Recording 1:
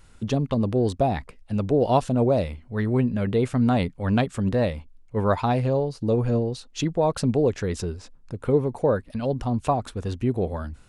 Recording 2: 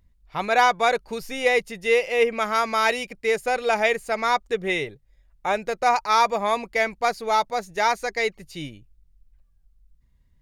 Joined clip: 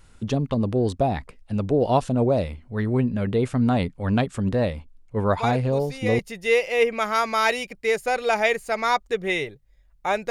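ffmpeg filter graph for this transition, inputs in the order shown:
ffmpeg -i cue0.wav -i cue1.wav -filter_complex "[1:a]asplit=2[link_01][link_02];[0:a]apad=whole_dur=10.3,atrim=end=10.3,atrim=end=6.192[link_03];[link_02]atrim=start=1.588:end=5.7[link_04];[link_01]atrim=start=0.73:end=1.59,asetpts=PTS-STARTPTS,volume=-8dB,afade=type=in:duration=0.004:curve=hsin,afade=type=out:start_time=0.856:duration=0.004:curve=hsin,adelay=235053S[link_05];[link_03][link_04]acrossfade=duration=0.004:curve1=hsin:curve2=hsin[link_06];[link_06][link_05]amix=inputs=2:normalize=0" out.wav

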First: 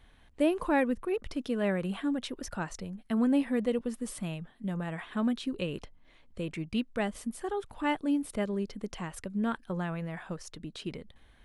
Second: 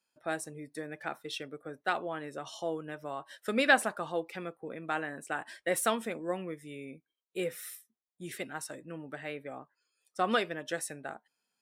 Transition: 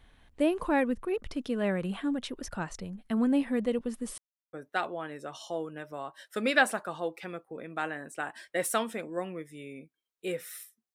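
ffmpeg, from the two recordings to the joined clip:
ffmpeg -i cue0.wav -i cue1.wav -filter_complex "[0:a]apad=whole_dur=10.94,atrim=end=10.94,asplit=2[link_01][link_02];[link_01]atrim=end=4.18,asetpts=PTS-STARTPTS,afade=type=out:start_time=4.176:duration=0.004:curve=hsin[link_03];[link_02]atrim=start=4.18:end=4.53,asetpts=PTS-STARTPTS,volume=0[link_04];[1:a]atrim=start=1.65:end=8.06,asetpts=PTS-STARTPTS,afade=type=in:duration=0.004:curve=hsin[link_05];[link_03][link_04][link_05]concat=n=3:v=0:a=1" out.wav

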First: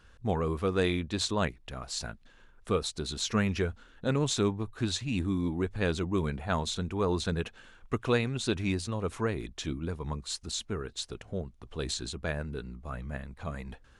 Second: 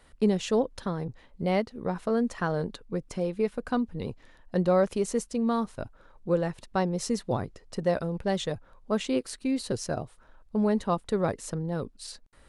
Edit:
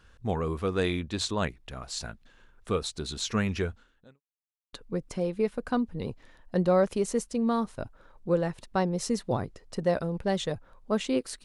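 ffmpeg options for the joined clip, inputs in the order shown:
ffmpeg -i cue0.wav -i cue1.wav -filter_complex "[0:a]apad=whole_dur=11.44,atrim=end=11.44,asplit=2[link_01][link_02];[link_01]atrim=end=4.21,asetpts=PTS-STARTPTS,afade=type=out:start_time=3.67:duration=0.54:curve=qua[link_03];[link_02]atrim=start=4.21:end=4.73,asetpts=PTS-STARTPTS,volume=0[link_04];[1:a]atrim=start=2.73:end=9.44,asetpts=PTS-STARTPTS,afade=type=in:duration=0.004:curve=hsin[link_05];[link_03][link_04][link_05]concat=n=3:v=0:a=1" out.wav

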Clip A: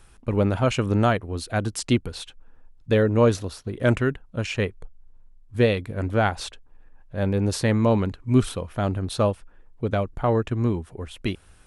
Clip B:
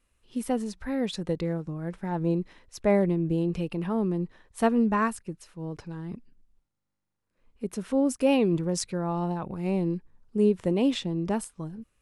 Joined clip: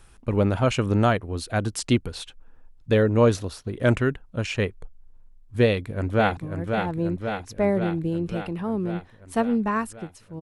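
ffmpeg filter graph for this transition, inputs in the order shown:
ffmpeg -i cue0.wav -i cue1.wav -filter_complex "[0:a]apad=whole_dur=10.41,atrim=end=10.41,atrim=end=6.372[link_01];[1:a]atrim=start=1.628:end=5.67[link_02];[link_01][link_02]acrossfade=duration=0.004:curve1=hsin:curve2=hsin,asplit=2[link_03][link_04];[link_04]afade=type=in:start_time=5.65:duration=0.01,afade=type=out:start_time=6.37:duration=0.01,aecho=0:1:540|1080|1620|2160|2700|3240|3780|4320|4860|5400|5940|6480:0.530884|0.371619|0.260133|0.182093|0.127465|0.0892257|0.062458|0.0437206|0.0306044|0.0214231|0.0149962|0.0104973[link_05];[link_03][link_05]amix=inputs=2:normalize=0" out.wav

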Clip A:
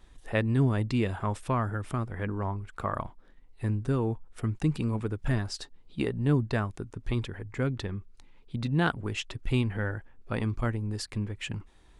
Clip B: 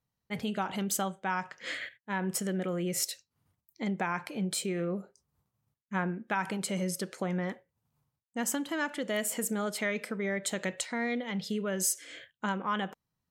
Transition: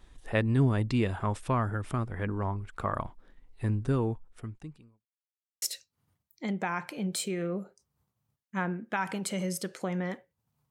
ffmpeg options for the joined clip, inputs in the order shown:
ffmpeg -i cue0.wav -i cue1.wav -filter_complex "[0:a]apad=whole_dur=10.7,atrim=end=10.7,asplit=2[link_01][link_02];[link_01]atrim=end=5.06,asetpts=PTS-STARTPTS,afade=type=out:start_time=4.01:duration=1.05:curve=qua[link_03];[link_02]atrim=start=5.06:end=5.62,asetpts=PTS-STARTPTS,volume=0[link_04];[1:a]atrim=start=3:end=8.08,asetpts=PTS-STARTPTS,afade=type=in:duration=0.004:curve=hsin[link_05];[link_03][link_04][link_05]concat=n=3:v=0:a=1" out.wav

